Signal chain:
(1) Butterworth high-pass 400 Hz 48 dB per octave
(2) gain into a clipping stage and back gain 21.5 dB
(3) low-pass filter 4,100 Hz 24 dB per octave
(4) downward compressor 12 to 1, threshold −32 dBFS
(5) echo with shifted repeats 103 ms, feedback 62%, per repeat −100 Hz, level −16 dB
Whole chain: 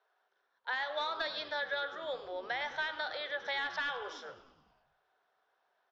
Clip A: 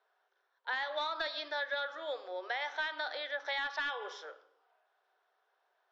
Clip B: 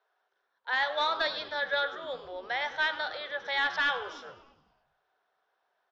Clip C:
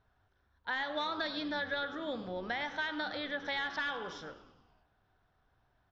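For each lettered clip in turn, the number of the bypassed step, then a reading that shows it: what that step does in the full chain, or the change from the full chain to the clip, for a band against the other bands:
5, echo-to-direct ratio −14.0 dB to none audible
4, average gain reduction 3.5 dB
1, 250 Hz band +14.5 dB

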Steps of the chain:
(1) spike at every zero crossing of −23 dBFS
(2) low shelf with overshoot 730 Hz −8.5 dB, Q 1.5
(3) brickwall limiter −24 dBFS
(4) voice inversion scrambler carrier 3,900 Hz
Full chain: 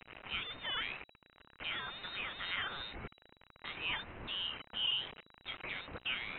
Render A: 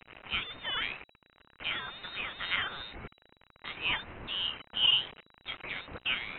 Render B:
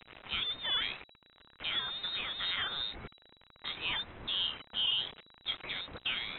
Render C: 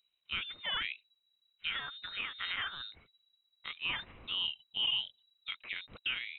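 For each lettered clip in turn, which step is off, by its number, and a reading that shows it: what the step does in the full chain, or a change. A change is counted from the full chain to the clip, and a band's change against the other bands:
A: 3, average gain reduction 3.0 dB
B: 2, 4 kHz band +5.0 dB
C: 1, distortion level −2 dB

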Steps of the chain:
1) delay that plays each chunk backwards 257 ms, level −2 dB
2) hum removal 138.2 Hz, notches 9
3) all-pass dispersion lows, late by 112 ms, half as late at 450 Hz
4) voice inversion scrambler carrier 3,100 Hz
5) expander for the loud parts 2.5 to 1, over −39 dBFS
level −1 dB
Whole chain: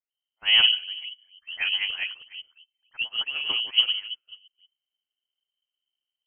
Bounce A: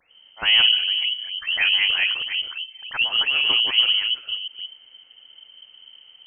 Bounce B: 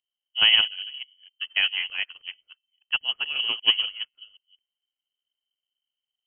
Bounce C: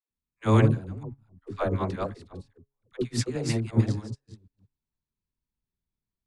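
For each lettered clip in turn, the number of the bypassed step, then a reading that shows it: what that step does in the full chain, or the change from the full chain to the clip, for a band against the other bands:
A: 5, change in crest factor −4.0 dB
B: 3, change in crest factor +2.5 dB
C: 4, change in integrated loudness −4.5 LU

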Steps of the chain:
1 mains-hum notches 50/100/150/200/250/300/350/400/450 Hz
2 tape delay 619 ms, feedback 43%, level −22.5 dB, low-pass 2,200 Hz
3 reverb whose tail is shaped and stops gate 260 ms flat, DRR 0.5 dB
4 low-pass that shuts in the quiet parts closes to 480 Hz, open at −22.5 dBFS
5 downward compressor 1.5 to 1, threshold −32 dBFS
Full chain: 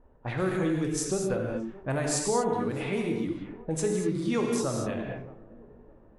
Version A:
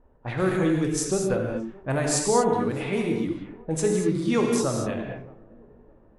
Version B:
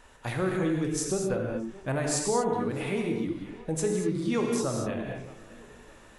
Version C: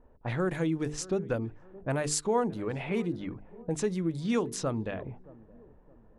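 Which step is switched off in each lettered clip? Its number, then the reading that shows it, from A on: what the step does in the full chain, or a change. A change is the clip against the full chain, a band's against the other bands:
5, average gain reduction 3.0 dB
4, change in momentary loudness spread +1 LU
3, change in momentary loudness spread +3 LU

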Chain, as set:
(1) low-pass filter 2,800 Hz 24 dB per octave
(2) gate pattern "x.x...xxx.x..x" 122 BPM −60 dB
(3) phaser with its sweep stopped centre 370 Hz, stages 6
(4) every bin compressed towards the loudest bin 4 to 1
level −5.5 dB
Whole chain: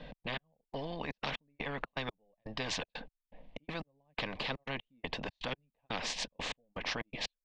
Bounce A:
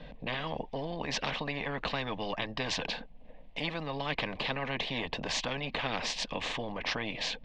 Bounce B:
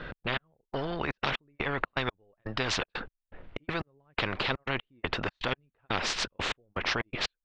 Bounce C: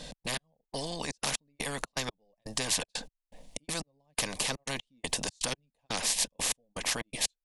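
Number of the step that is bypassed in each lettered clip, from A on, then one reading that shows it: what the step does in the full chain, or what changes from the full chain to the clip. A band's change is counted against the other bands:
2, 8 kHz band −1.5 dB
3, 8 kHz band −3.0 dB
1, 8 kHz band +15.5 dB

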